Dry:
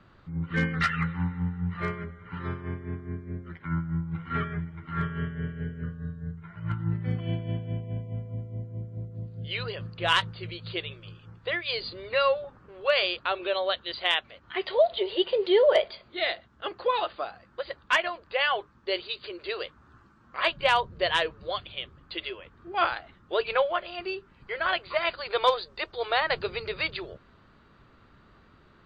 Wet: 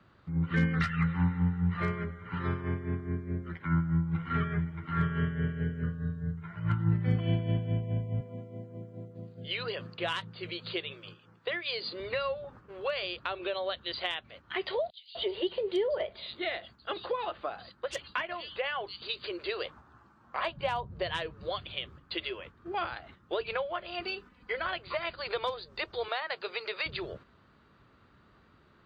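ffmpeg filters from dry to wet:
-filter_complex "[0:a]asettb=1/sr,asplit=3[a][b][c];[a]atrim=end=8.204[d];[b]atrim=start=8.2:end=12,asetpts=PTS-STARTPTS,afade=t=in:d=0.004:c=qsin,afade=t=out:st=3.796:d=0.004:c=qsin,highpass=210[e];[c]atrim=start=11.996[f];[d][e]acrossfade=d=0.004:c1=hsin:c2=qsin[g];[g][f]acrossfade=d=0.004:c1=qsin:c2=hsin,asettb=1/sr,asplit=3[h][i][j];[h]atrim=end=14.904[k];[i]atrim=start=14.9:end=19.02,asetpts=PTS-STARTPTS,afade=t=in:d=0.004:c=qsin,afade=t=out:st=4.116:d=0.004:c=qsin,acrossover=split=4100[l][m];[l]adelay=250[n];[n][m]amix=inputs=2:normalize=0,atrim=end_sample=181692[o];[j]atrim=start=19.016[p];[k][o]acrossfade=d=0.004:c1=hsin:c2=qsin[q];[q][p]acrossfade=d=0.004:c1=qsin:c2=hsin,asettb=1/sr,asplit=3[r][s][t];[r]atrim=end=19.654[u];[s]atrim=start=19.65:end=21.03,asetpts=PTS-STARTPTS,afade=t=in:d=0.004:c=qsin,afade=t=out:st=1.376:d=0.004:c=qsin,equalizer=f=780:w=1.5:g=8.5[v];[t]atrim=start=21.026[w];[u][v]acrossfade=d=0.004:c1=hsin:c2=qsin[x];[x][w]acrossfade=d=0.004:c1=qsin:c2=hsin,asettb=1/sr,asplit=3[y][z][aa];[y]atrim=end=24.024[ab];[z]atrim=start=24.02:end=24.64,asetpts=PTS-STARTPTS,afade=t=in:d=0.004:c=qsin,afade=t=out:st=0.616:d=0.004:c=qsin,aecho=1:1:4:0.67,atrim=end_sample=27342[ac];[aa]atrim=start=24.636[ad];[ab][ac]acrossfade=d=0.004:c1=hsin:c2=qsin[ae];[ae][ad]acrossfade=d=0.004:c1=qsin:c2=hsin,asettb=1/sr,asplit=3[af][ag][ah];[af]atrim=end=26.084[ai];[ag]atrim=start=26.08:end=26.86,asetpts=PTS-STARTPTS,afade=t=in:d=0.004:c=qsin,afade=t=out:st=0.776:d=0.004:c=qsin,highpass=530[aj];[ah]atrim=start=26.856[ak];[ai][aj]acrossfade=d=0.004:c1=hsin:c2=qsin[al];[al][ak]acrossfade=d=0.004:c1=qsin:c2=hsin,highpass=51,agate=range=-6dB:threshold=-50dB:ratio=16:detection=peak,acrossover=split=240[am][an];[an]acompressor=threshold=-33dB:ratio=6[ao];[am][ao]amix=inputs=2:normalize=0,volume=2dB"

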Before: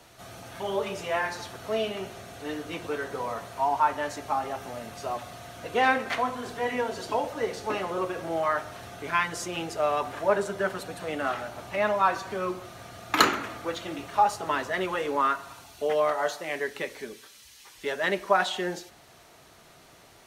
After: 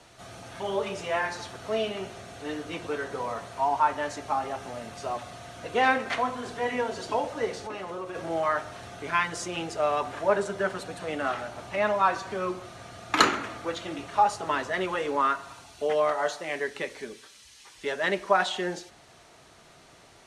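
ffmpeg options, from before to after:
-filter_complex "[0:a]asettb=1/sr,asplit=3[a][b][c];[a]atrim=end=7.564[d];[b]atrim=start=7.56:end=8.15,asetpts=PTS-STARTPTS,afade=t=in:d=0.004:c=qsin,afade=t=out:st=0.586:d=0.004:c=qsin,acompressor=threshold=-34dB:ratio=3:attack=3.2:release=140:knee=1:detection=peak[e];[c]atrim=start=8.146[f];[d][e]acrossfade=d=0.004:c1=hsin:c2=qsin[g];[g][f]acrossfade=d=0.004:c1=qsin:c2=hsin,lowpass=f=10k:w=0.5412,lowpass=f=10k:w=1.3066"

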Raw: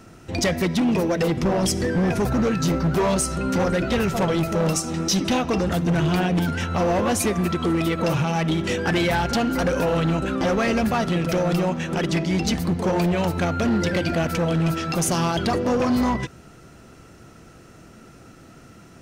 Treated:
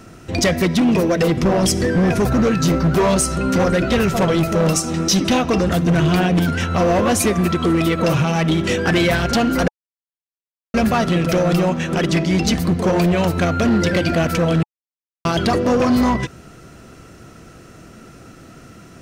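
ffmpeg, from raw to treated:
-filter_complex "[0:a]asplit=5[a][b][c][d][e];[a]atrim=end=9.68,asetpts=PTS-STARTPTS,afade=t=out:st=9.676:d=0.004:c=hsin[f];[b]atrim=start=9.68:end=10.74,asetpts=PTS-STARTPTS,volume=0[g];[c]atrim=start=10.74:end=14.63,asetpts=PTS-STARTPTS,afade=t=in:d=0.004:c=hsin,afade=t=out:st=3.886:d=0.004:c=hsin[h];[d]atrim=start=14.63:end=15.25,asetpts=PTS-STARTPTS,volume=0[i];[e]atrim=start=15.25,asetpts=PTS-STARTPTS,afade=t=in:d=0.004:c=hsin[j];[f][g][h][i][j]concat=n=5:v=0:a=1,bandreject=f=860:w=12,volume=5dB"

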